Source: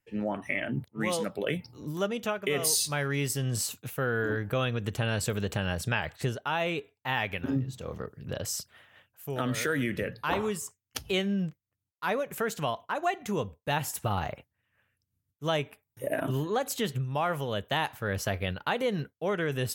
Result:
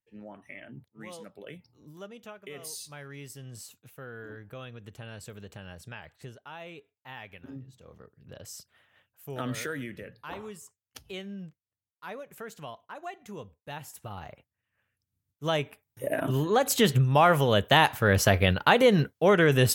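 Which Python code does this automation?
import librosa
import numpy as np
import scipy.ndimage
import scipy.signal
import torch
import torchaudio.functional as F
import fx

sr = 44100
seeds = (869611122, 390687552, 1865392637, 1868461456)

y = fx.gain(x, sr, db=fx.line((8.04, -14.0), (9.51, -2.5), (10.01, -11.0), (14.13, -11.0), (15.53, 1.0), (16.2, 1.0), (16.88, 9.0)))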